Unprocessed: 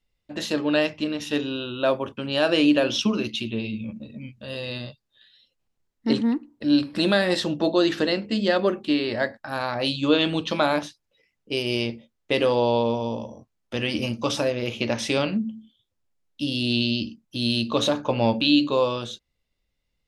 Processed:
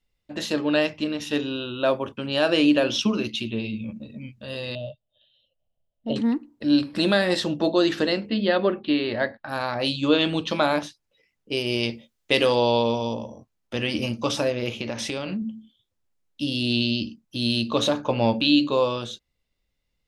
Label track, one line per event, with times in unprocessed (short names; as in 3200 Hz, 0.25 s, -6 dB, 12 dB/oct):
4.750000	6.160000	EQ curve 130 Hz 0 dB, 380 Hz -12 dB, 620 Hz +11 dB, 900 Hz -10 dB, 2000 Hz -26 dB, 3000 Hz +1 dB, 4900 Hz -23 dB
8.290000	9.490000	steep low-pass 4400 Hz 48 dB/oct
11.830000	13.140000	high shelf 2300 Hz +8.5 dB
14.720000	15.420000	compressor, threshold -25 dBFS